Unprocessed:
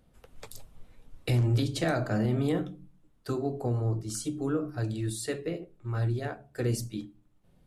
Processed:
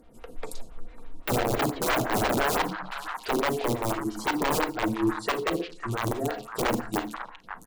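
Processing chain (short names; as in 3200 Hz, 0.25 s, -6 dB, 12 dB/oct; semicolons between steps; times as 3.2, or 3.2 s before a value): treble ducked by the level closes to 1800 Hz, closed at -27.5 dBFS; bell 320 Hz +10 dB 0.21 oct; comb 4.3 ms, depth 42%; in parallel at +3 dB: compressor 20:1, threshold -40 dBFS, peak gain reduction 21.5 dB; on the sum: wrapped overs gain 21 dB; delay with a stepping band-pass 0.547 s, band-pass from 1300 Hz, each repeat 1.4 oct, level -5 dB; on a send at -8.5 dB: reverb, pre-delay 33 ms; on the sum: photocell phaser 5.9 Hz; gain +3.5 dB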